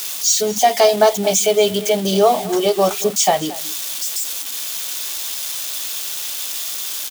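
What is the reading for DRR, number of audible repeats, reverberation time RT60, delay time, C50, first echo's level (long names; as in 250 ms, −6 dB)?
no reverb audible, 1, no reverb audible, 228 ms, no reverb audible, −18.0 dB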